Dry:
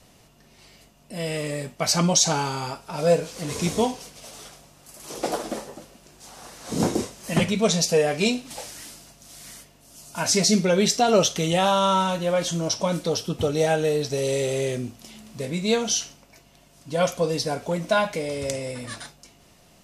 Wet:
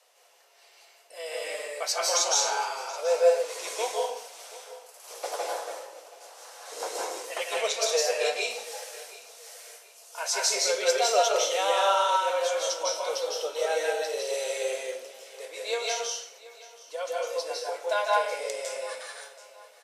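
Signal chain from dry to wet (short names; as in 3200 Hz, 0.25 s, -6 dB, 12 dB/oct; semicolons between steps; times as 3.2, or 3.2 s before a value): elliptic high-pass 480 Hz, stop band 70 dB; 15.89–17.9 compressor 2:1, threshold -29 dBFS, peak gain reduction 7 dB; feedback echo 0.728 s, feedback 32%, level -19 dB; reverb RT60 0.70 s, pre-delay 0.151 s, DRR -3 dB; gain -6 dB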